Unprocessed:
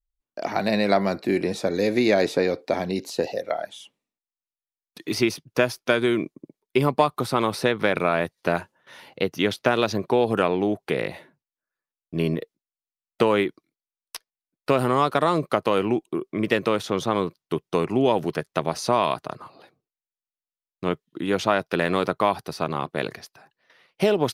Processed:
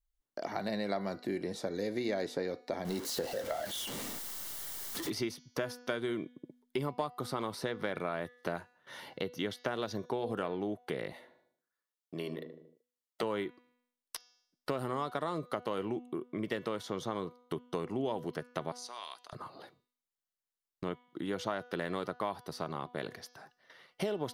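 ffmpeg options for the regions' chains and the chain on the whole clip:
ffmpeg -i in.wav -filter_complex "[0:a]asettb=1/sr,asplit=3[link_01][link_02][link_03];[link_01]atrim=end=2.854[link_04];[link_02]atrim=start=2.85:end=5.1,asetpts=PTS-STARTPTS,afade=type=in:duration=0.004:curve=qsin,afade=type=out:start_time=2.246:duration=0.004:curve=qsin,aeval=exprs='val(0)+0.5*0.0447*sgn(val(0))':channel_layout=same,highshelf=frequency=9700:gain=4.5[link_05];[link_03]atrim=start=5.096[link_06];[link_04][link_05]acrossfade=duration=0.004:curve1=hsin:curve2=qsin[link_07];[link_07][link_06]acrossfade=duration=0.004:curve1=qsin:curve2=hsin,asettb=1/sr,asplit=3[link_08][link_09][link_10];[link_08]atrim=end=11.134[link_11];[link_09]atrim=start=11.13:end=13.23,asetpts=PTS-STARTPTS,afade=type=in:duration=0.004:curve=qsin,afade=type=out:start_time=2.096:duration=0.004:curve=qsin,highpass=frequency=510:poles=1,bandreject=frequency=1600:width=13,asplit=2[link_12][link_13];[link_13]adelay=76,lowpass=frequency=1100:poles=1,volume=-9dB,asplit=2[link_14][link_15];[link_15]adelay=76,lowpass=frequency=1100:poles=1,volume=0.48,asplit=2[link_16][link_17];[link_17]adelay=76,lowpass=frequency=1100:poles=1,volume=0.48,asplit=2[link_18][link_19];[link_19]adelay=76,lowpass=frequency=1100:poles=1,volume=0.48,asplit=2[link_20][link_21];[link_21]adelay=76,lowpass=frequency=1100:poles=1,volume=0.48[link_22];[link_12][link_14][link_16][link_18][link_20][link_22]amix=inputs=6:normalize=0,atrim=end_sample=92610[link_23];[link_10]atrim=start=13.226[link_24];[link_11][link_23]acrossfade=duration=0.004:curve1=hsin:curve2=qsin[link_25];[link_25][link_24]acrossfade=duration=0.004:curve1=qsin:curve2=hsin,asettb=1/sr,asplit=3[link_26][link_27][link_28];[link_26]atrim=end=18.724[link_29];[link_27]atrim=start=18.72:end=19.33,asetpts=PTS-STARTPTS,afade=type=in:duration=0.004:curve=qsin,afade=type=out:start_time=0.606:duration=0.004:curve=qsin,highpass=240,lowpass=7300,aderivative,bandreject=frequency=630:width=12[link_30];[link_28]atrim=start=19.326[link_31];[link_29][link_30]acrossfade=duration=0.004:curve1=hsin:curve2=qsin[link_32];[link_32][link_31]acrossfade=duration=0.004:curve1=qsin:curve2=hsin,bandreject=frequency=2500:width=6.4,bandreject=frequency=245.6:width_type=h:width=4,bandreject=frequency=491.2:width_type=h:width=4,bandreject=frequency=736.8:width_type=h:width=4,bandreject=frequency=982.4:width_type=h:width=4,bandreject=frequency=1228:width_type=h:width=4,bandreject=frequency=1473.6:width_type=h:width=4,bandreject=frequency=1719.2:width_type=h:width=4,bandreject=frequency=1964.8:width_type=h:width=4,bandreject=frequency=2210.4:width_type=h:width=4,bandreject=frequency=2456:width_type=h:width=4,bandreject=frequency=2701.6:width_type=h:width=4,bandreject=frequency=2947.2:width_type=h:width=4,bandreject=frequency=3192.8:width_type=h:width=4,bandreject=frequency=3438.4:width_type=h:width=4,bandreject=frequency=3684:width_type=h:width=4,bandreject=frequency=3929.6:width_type=h:width=4,bandreject=frequency=4175.2:width_type=h:width=4,bandreject=frequency=4420.8:width_type=h:width=4,bandreject=frequency=4666.4:width_type=h:width=4,bandreject=frequency=4912:width_type=h:width=4,bandreject=frequency=5157.6:width_type=h:width=4,bandreject=frequency=5403.2:width_type=h:width=4,bandreject=frequency=5648.8:width_type=h:width=4,bandreject=frequency=5894.4:width_type=h:width=4,bandreject=frequency=6140:width_type=h:width=4,bandreject=frequency=6385.6:width_type=h:width=4,bandreject=frequency=6631.2:width_type=h:width=4,bandreject=frequency=6876.8:width_type=h:width=4,acompressor=threshold=-43dB:ratio=2" out.wav

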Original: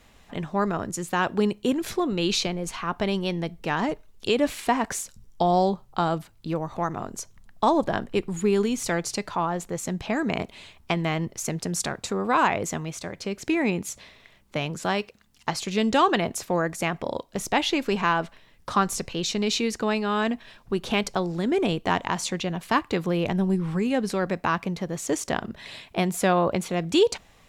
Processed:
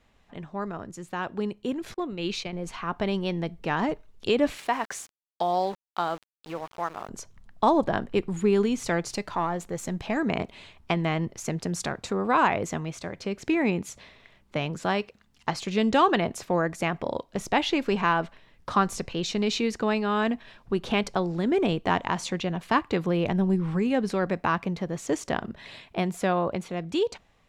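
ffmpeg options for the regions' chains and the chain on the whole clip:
ffmpeg -i in.wav -filter_complex "[0:a]asettb=1/sr,asplit=3[link_01][link_02][link_03];[link_01]atrim=end=1.944[link_04];[link_02]atrim=start=1.94:end=2.53,asetpts=PTS-STARTPTS,afade=type=in:duration=0.004:curve=qsin,afade=type=out:start_time=0.586:duration=0.004:curve=qsin,agate=range=-33dB:threshold=-23dB:ratio=3:release=100:detection=peak,equalizer=frequency=2300:width=2.9:gain=4.5[link_05];[link_03]atrim=start=2.526[link_06];[link_04][link_05]acrossfade=duration=0.004:curve1=hsin:curve2=qsin[link_07];[link_07][link_06]acrossfade=duration=0.004:curve1=qsin:curve2=hsin,asettb=1/sr,asplit=3[link_08][link_09][link_10];[link_08]atrim=end=4.574[link_11];[link_09]atrim=start=4.57:end=7.09,asetpts=PTS-STARTPTS,afade=type=in:duration=0.004:curve=qsin,afade=type=out:start_time=2.516:duration=0.004:curve=qsin,highpass=frequency=750:poles=1,aeval=exprs='val(0)*gte(abs(val(0)),0.0112)':channel_layout=same[link_12];[link_10]atrim=start=7.086[link_13];[link_11][link_12]acrossfade=duration=0.004:curve1=hsin:curve2=qsin[link_14];[link_14][link_13]acrossfade=duration=0.004:curve1=qsin:curve2=hsin,asettb=1/sr,asplit=3[link_15][link_16][link_17];[link_15]atrim=end=9.104[link_18];[link_16]atrim=start=9.1:end=10.17,asetpts=PTS-STARTPTS,afade=type=in:duration=0.004:curve=qsin,afade=type=out:start_time=1.066:duration=0.004:curve=qsin,aeval=exprs='if(lt(val(0),0),0.708*val(0),val(0))':channel_layout=same,highshelf=frequency=7000:gain=6[link_19];[link_17]atrim=start=10.166[link_20];[link_18][link_19]acrossfade=duration=0.004:curve1=hsin:curve2=qsin[link_21];[link_21][link_20]acrossfade=duration=0.004:curve1=qsin:curve2=hsin,dynaudnorm=framelen=700:gausssize=7:maxgain=11.5dB,lowpass=frequency=3600:poles=1,volume=-8dB" out.wav

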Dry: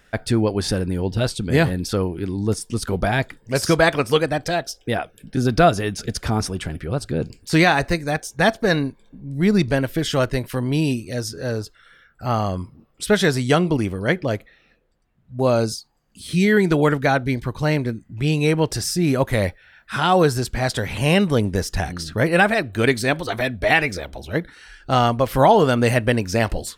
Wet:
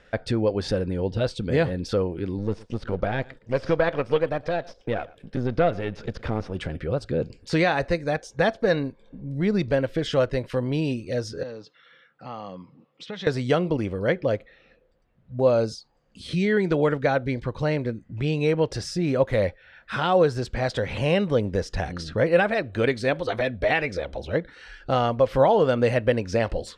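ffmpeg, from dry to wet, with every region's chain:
ffmpeg -i in.wav -filter_complex "[0:a]asettb=1/sr,asplit=3[link_01][link_02][link_03];[link_01]atrim=end=2.384[link_04];[link_02]atrim=start=2.38:end=6.55,asetpts=PTS-STARTPTS,afade=type=in:duration=0.004:curve=qsin,afade=type=out:start_time=4.166:duration=0.004:curve=qsin,aeval=exprs='if(lt(val(0),0),0.447*val(0),val(0))':channel_layout=same,acrossover=split=3700[link_05][link_06];[link_06]acompressor=threshold=-48dB:ratio=4:attack=1:release=60[link_07];[link_05][link_07]amix=inputs=2:normalize=0,aecho=1:1:114:0.0668,atrim=end_sample=183897[link_08];[link_03]atrim=start=6.546[link_09];[link_04][link_08]acrossfade=duration=0.004:curve1=hsin:curve2=qsin[link_10];[link_10][link_09]acrossfade=duration=0.004:curve1=qsin:curve2=hsin,asettb=1/sr,asplit=3[link_11][link_12][link_13];[link_11]atrim=end=11.434[link_14];[link_12]atrim=start=11.43:end=13.27,asetpts=PTS-STARTPTS,afade=type=in:duration=0.004:curve=qsin,afade=type=out:start_time=1.836:duration=0.004:curve=qsin,acompressor=threshold=-36dB:ratio=2:attack=3.2:release=140:knee=1:detection=peak,highpass=frequency=160:width=0.5412,highpass=frequency=160:width=1.3066,equalizer=frequency=220:width_type=q:width=4:gain=-5,equalizer=frequency=390:width_type=q:width=4:gain=-10,equalizer=frequency=620:width_type=q:width=4:gain=-9,equalizer=frequency=1500:width_type=q:width=4:gain=-8,equalizer=frequency=4900:width_type=q:width=4:gain=-4,lowpass=frequency=5800:width=0.5412,lowpass=frequency=5800:width=1.3066[link_15];[link_13]atrim=start=13.266[link_16];[link_14][link_15]acrossfade=duration=0.004:curve1=hsin:curve2=qsin[link_17];[link_17][link_16]acrossfade=duration=0.004:curve1=qsin:curve2=hsin,acompressor=threshold=-32dB:ratio=1.5,lowpass=4700,equalizer=frequency=520:width_type=o:width=0.39:gain=9" out.wav

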